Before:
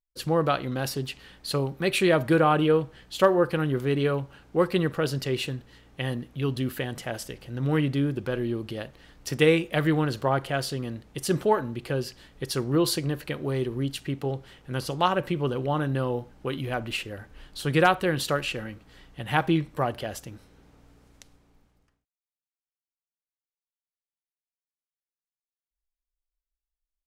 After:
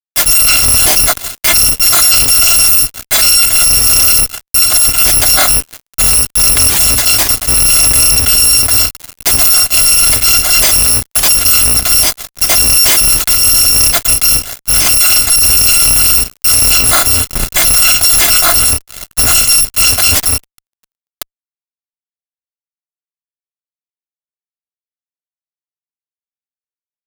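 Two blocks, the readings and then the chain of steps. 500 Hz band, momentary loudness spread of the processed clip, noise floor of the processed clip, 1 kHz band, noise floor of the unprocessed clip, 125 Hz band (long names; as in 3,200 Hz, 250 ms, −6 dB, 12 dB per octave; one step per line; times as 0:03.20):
−1.0 dB, 6 LU, below −85 dBFS, +8.0 dB, below −85 dBFS, +5.0 dB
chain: samples in bit-reversed order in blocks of 256 samples
mains-hum notches 60/120/180/240/300/360/420/480 Hz
in parallel at −1 dB: downward compressor 6 to 1, threshold −31 dBFS, peak gain reduction 16 dB
on the sum: fuzz pedal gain 45 dB, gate −40 dBFS
level +7.5 dB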